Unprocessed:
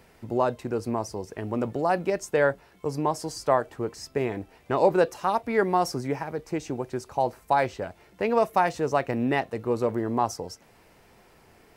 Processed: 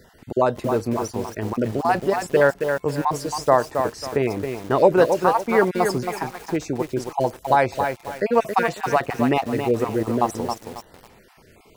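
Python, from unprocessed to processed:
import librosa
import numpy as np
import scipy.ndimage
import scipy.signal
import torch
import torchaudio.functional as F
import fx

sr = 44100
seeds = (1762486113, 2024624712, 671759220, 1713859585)

y = fx.spec_dropout(x, sr, seeds[0], share_pct=25)
y = fx.echo_crushed(y, sr, ms=272, feedback_pct=35, bits=7, wet_db=-6.0)
y = F.gain(torch.from_numpy(y), 5.5).numpy()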